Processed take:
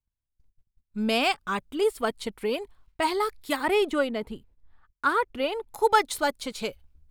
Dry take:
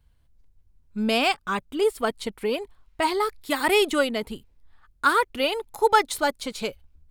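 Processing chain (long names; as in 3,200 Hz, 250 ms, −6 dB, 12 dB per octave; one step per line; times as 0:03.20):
noise gate −53 dBFS, range −24 dB
0:03.56–0:05.70: high-shelf EQ 2,900 Hz −11 dB
level −2 dB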